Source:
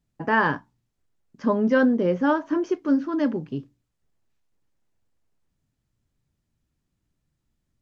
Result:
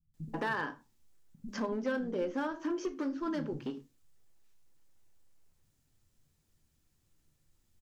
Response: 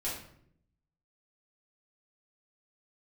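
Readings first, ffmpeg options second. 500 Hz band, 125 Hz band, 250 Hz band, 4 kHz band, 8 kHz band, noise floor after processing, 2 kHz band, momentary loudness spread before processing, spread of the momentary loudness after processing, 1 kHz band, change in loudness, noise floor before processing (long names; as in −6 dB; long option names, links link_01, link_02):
−11.5 dB, −11.0 dB, −13.0 dB, −7.0 dB, can't be measured, −75 dBFS, −12.0 dB, 12 LU, 10 LU, −12.5 dB, −13.0 dB, −78 dBFS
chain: -filter_complex "[0:a]highshelf=frequency=4300:gain=9.5,acompressor=threshold=-31dB:ratio=12,volume=28.5dB,asoftclip=hard,volume=-28.5dB,acrossover=split=180[link_01][link_02];[link_02]adelay=140[link_03];[link_01][link_03]amix=inputs=2:normalize=0,asplit=2[link_04][link_05];[1:a]atrim=start_sample=2205,afade=type=out:start_time=0.25:duration=0.01,atrim=end_sample=11466,asetrate=70560,aresample=44100[link_06];[link_05][link_06]afir=irnorm=-1:irlink=0,volume=-7.5dB[link_07];[link_04][link_07]amix=inputs=2:normalize=0"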